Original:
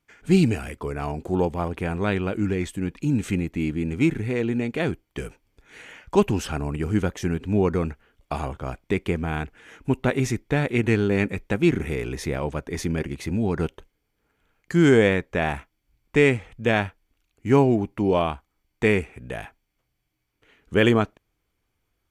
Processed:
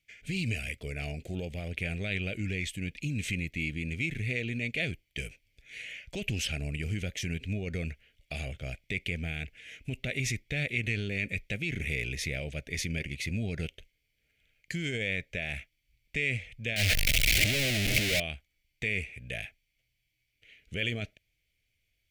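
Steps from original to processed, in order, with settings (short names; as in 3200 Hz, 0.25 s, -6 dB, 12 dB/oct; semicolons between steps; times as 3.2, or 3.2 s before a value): 16.76–18.2 infinite clipping; limiter -17.5 dBFS, peak gain reduction 11 dB; EQ curve 120 Hz 0 dB, 350 Hz -11 dB, 630 Hz -3 dB, 1000 Hz -29 dB, 2200 Hz +10 dB, 8400 Hz +2 dB; gain -4 dB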